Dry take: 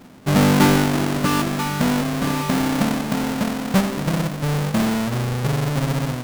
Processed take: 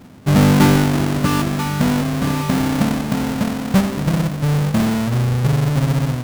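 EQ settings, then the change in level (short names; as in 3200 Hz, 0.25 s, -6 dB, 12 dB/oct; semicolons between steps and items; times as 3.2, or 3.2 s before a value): bell 83 Hz +8.5 dB 2 oct; 0.0 dB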